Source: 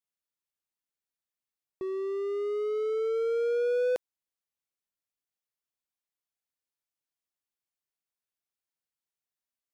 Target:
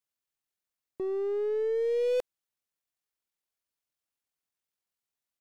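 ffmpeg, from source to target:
ffmpeg -i in.wav -af "aeval=exprs='0.0891*(cos(1*acos(clip(val(0)/0.0891,-1,1)))-cos(1*PI/2))+0.00126*(cos(4*acos(clip(val(0)/0.0891,-1,1)))-cos(4*PI/2))+0.00631*(cos(5*acos(clip(val(0)/0.0891,-1,1)))-cos(5*PI/2))+0.00224*(cos(8*acos(clip(val(0)/0.0891,-1,1)))-cos(8*PI/2))':channel_layout=same,atempo=1.8" out.wav

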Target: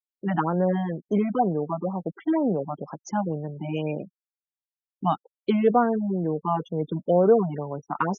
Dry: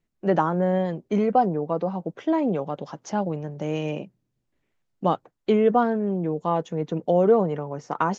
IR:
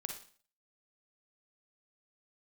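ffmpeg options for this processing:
-af "afftfilt=real='re*gte(hypot(re,im),0.0158)':imag='im*gte(hypot(re,im),0.0158)':win_size=1024:overlap=0.75,afftfilt=real='re*(1-between(b*sr/1024,410*pow(3900/410,0.5+0.5*sin(2*PI*2.1*pts/sr))/1.41,410*pow(3900/410,0.5+0.5*sin(2*PI*2.1*pts/sr))*1.41))':imag='im*(1-between(b*sr/1024,410*pow(3900/410,0.5+0.5*sin(2*PI*2.1*pts/sr))/1.41,410*pow(3900/410,0.5+0.5*sin(2*PI*2.1*pts/sr))*1.41))':win_size=1024:overlap=0.75"

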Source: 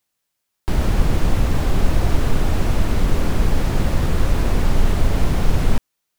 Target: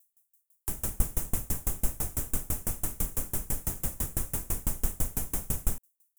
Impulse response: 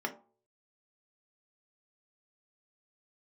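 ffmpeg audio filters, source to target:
-filter_complex "[0:a]acrossover=split=360|700[link_01][link_02][link_03];[link_02]volume=34.5dB,asoftclip=hard,volume=-34.5dB[link_04];[link_01][link_04][link_03]amix=inputs=3:normalize=0,aexciter=amount=11.3:drive=7.6:freq=6600,aeval=exprs='val(0)*pow(10,-30*if(lt(mod(6*n/s,1),2*abs(6)/1000),1-mod(6*n/s,1)/(2*abs(6)/1000),(mod(6*n/s,1)-2*abs(6)/1000)/(1-2*abs(6)/1000))/20)':channel_layout=same,volume=-9dB"

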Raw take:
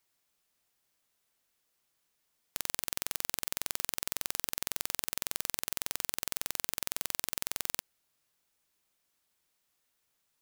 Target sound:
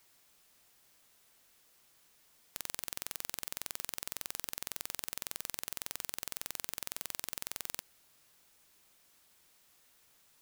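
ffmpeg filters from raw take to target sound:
ffmpeg -i in.wav -af "asoftclip=type=tanh:threshold=-21dB,volume=11.5dB" out.wav

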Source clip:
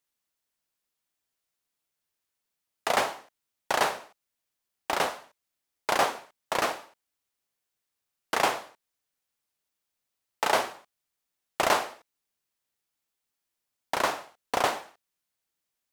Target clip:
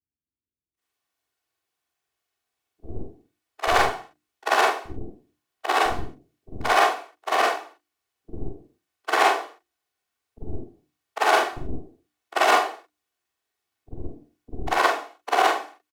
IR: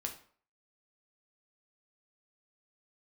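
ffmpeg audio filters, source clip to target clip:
-filter_complex "[0:a]afftfilt=real='re':imag='-im':win_size=4096:overlap=0.75,highpass=65,tiltshelf=frequency=800:gain=4.5,bandreject=frequency=50:width_type=h:width=6,bandreject=frequency=100:width_type=h:width=6,bandreject=frequency=150:width_type=h:width=6,bandreject=frequency=200:width_type=h:width=6,bandreject=frequency=250:width_type=h:width=6,bandreject=frequency=300:width_type=h:width=6,bandreject=frequency=350:width_type=h:width=6,asplit=3[link_01][link_02][link_03];[link_02]asetrate=22050,aresample=44100,atempo=2,volume=-15dB[link_04];[link_03]asetrate=35002,aresample=44100,atempo=1.25992,volume=-8dB[link_05];[link_01][link_04][link_05]amix=inputs=3:normalize=0,equalizer=frequency=1700:width=0.36:gain=6.5,aeval=exprs='0.335*(cos(1*acos(clip(val(0)/0.335,-1,1)))-cos(1*PI/2))+0.00211*(cos(3*acos(clip(val(0)/0.335,-1,1)))-cos(3*PI/2))+0.0531*(cos(4*acos(clip(val(0)/0.335,-1,1)))-cos(4*PI/2))':channel_layout=same,aecho=1:1:2.7:0.51,acrossover=split=240|580|2200[link_06][link_07][link_08][link_09];[link_07]asoftclip=type=hard:threshold=-31.5dB[link_10];[link_06][link_10][link_08][link_09]amix=inputs=4:normalize=0,acrossover=split=290[link_11][link_12];[link_12]adelay=800[link_13];[link_11][link_13]amix=inputs=2:normalize=0,volume=5.5dB"

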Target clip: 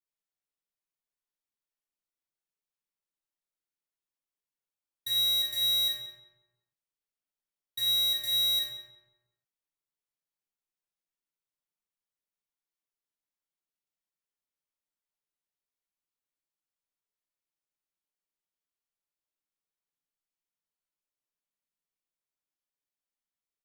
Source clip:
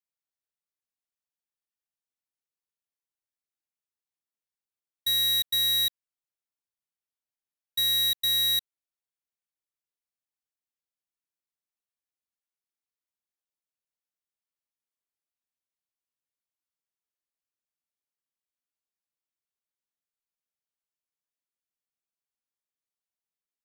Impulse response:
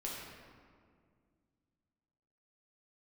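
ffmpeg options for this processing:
-filter_complex "[0:a]asplit=2[link_01][link_02];[link_02]adelay=180,lowpass=frequency=1800:poles=1,volume=-6.5dB,asplit=2[link_03][link_04];[link_04]adelay=180,lowpass=frequency=1800:poles=1,volume=0.36,asplit=2[link_05][link_06];[link_06]adelay=180,lowpass=frequency=1800:poles=1,volume=0.36,asplit=2[link_07][link_08];[link_08]adelay=180,lowpass=frequency=1800:poles=1,volume=0.36[link_09];[link_01][link_03][link_05][link_07][link_09]amix=inputs=5:normalize=0[link_10];[1:a]atrim=start_sample=2205,atrim=end_sample=6174[link_11];[link_10][link_11]afir=irnorm=-1:irlink=0,volume=-2dB"

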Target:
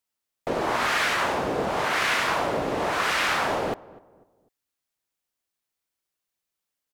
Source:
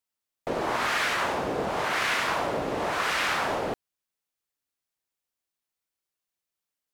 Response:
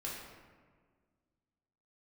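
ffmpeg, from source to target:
-filter_complex "[0:a]asplit=2[link_01][link_02];[link_02]adelay=249,lowpass=frequency=1000:poles=1,volume=-19dB,asplit=2[link_03][link_04];[link_04]adelay=249,lowpass=frequency=1000:poles=1,volume=0.39,asplit=2[link_05][link_06];[link_06]adelay=249,lowpass=frequency=1000:poles=1,volume=0.39[link_07];[link_01][link_03][link_05][link_07]amix=inputs=4:normalize=0,volume=2.5dB"

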